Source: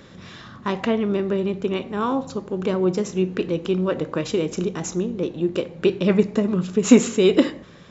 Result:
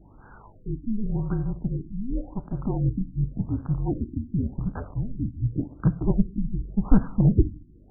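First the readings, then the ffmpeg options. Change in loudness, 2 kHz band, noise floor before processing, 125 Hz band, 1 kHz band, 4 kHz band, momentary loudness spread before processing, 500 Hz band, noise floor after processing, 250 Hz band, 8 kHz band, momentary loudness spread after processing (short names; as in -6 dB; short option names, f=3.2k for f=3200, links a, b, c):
-5.5 dB, under -15 dB, -45 dBFS, +4.5 dB, -11.0 dB, under -40 dB, 10 LU, -17.0 dB, -51 dBFS, -6.0 dB, n/a, 10 LU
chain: -filter_complex "[0:a]highpass=f=190:t=q:w=0.5412,highpass=f=190:t=q:w=1.307,lowpass=f=3.2k:t=q:w=0.5176,lowpass=f=3.2k:t=q:w=0.7071,lowpass=f=3.2k:t=q:w=1.932,afreqshift=-230,asplit=2[a][b];[b]acrusher=bits=3:dc=4:mix=0:aa=0.000001,volume=-10dB[c];[a][c]amix=inputs=2:normalize=0,aeval=exprs='val(0)+0.00316*(sin(2*PI*50*n/s)+sin(2*PI*2*50*n/s)/2+sin(2*PI*3*50*n/s)/3+sin(2*PI*4*50*n/s)/4+sin(2*PI*5*50*n/s)/5)':c=same,afftfilt=real='re*lt(b*sr/1024,330*pow(1700/330,0.5+0.5*sin(2*PI*0.89*pts/sr)))':imag='im*lt(b*sr/1024,330*pow(1700/330,0.5+0.5*sin(2*PI*0.89*pts/sr)))':win_size=1024:overlap=0.75,volume=-4dB"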